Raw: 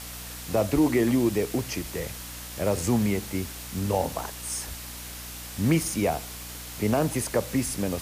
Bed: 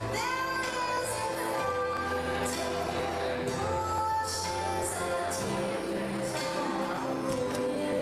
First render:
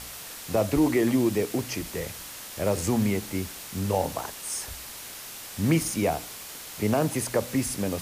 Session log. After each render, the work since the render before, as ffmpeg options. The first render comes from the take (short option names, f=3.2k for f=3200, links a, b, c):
-af "bandreject=f=60:t=h:w=4,bandreject=f=120:t=h:w=4,bandreject=f=180:t=h:w=4,bandreject=f=240:t=h:w=4,bandreject=f=300:t=h:w=4"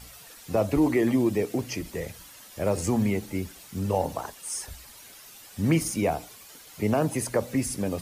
-af "afftdn=nr=11:nf=-41"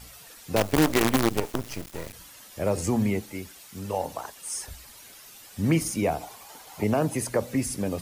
-filter_complex "[0:a]asettb=1/sr,asplit=3[a][b][c];[a]atrim=end=0.564[d];[b]atrim=start=0.56:end=2.13,asetpts=PTS-STARTPTS,afade=t=in:d=0.004:c=qsin,afade=t=out:st=1.566:d=0.004:c=qsin,acrusher=bits=4:dc=4:mix=0:aa=0.000001[e];[c]atrim=start=2.126[f];[d][e]acrossfade=d=0.004:c1=hsin:c2=qsin[g];[g][f]acrossfade=d=0.004:c1=qsin:c2=hsin,asettb=1/sr,asplit=3[h][i][j];[h]atrim=end=3.224[k];[i]atrim=start=3.22:end=4.36,asetpts=PTS-STARTPTS,afade=t=in:d=0.004:c=qsin,afade=t=out:st=1.136:d=0.004:c=qsin,lowshelf=f=420:g=-8.5[l];[j]atrim=start=4.356[m];[k][l]acrossfade=d=0.004:c1=hsin:c2=qsin[n];[n][m]acrossfade=d=0.004:c1=qsin:c2=hsin,asettb=1/sr,asplit=3[o][p][q];[o]atrim=end=6.214[r];[p]atrim=start=6.21:end=6.84,asetpts=PTS-STARTPTS,afade=t=in:d=0.004:c=qsin,afade=t=out:st=0.626:d=0.004:c=qsin,equalizer=f=830:t=o:w=0.82:g=14.5[s];[q]atrim=start=6.836[t];[r][s]acrossfade=d=0.004:c1=hsin:c2=qsin[u];[u][t]acrossfade=d=0.004:c1=qsin:c2=hsin"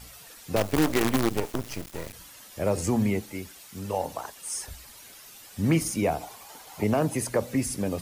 -af "asoftclip=type=hard:threshold=-15dB"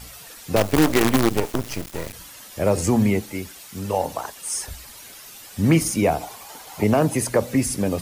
-af "volume=6dB"